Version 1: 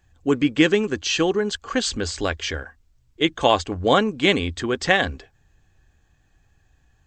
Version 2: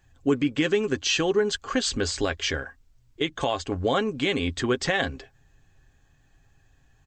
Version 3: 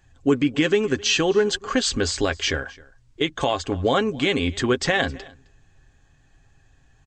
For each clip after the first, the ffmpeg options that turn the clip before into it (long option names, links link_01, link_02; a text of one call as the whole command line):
ffmpeg -i in.wav -af "aecho=1:1:7.4:0.35,alimiter=limit=-13dB:level=0:latency=1:release=199" out.wav
ffmpeg -i in.wav -af "aecho=1:1:263:0.0708,aresample=22050,aresample=44100,volume=3.5dB" out.wav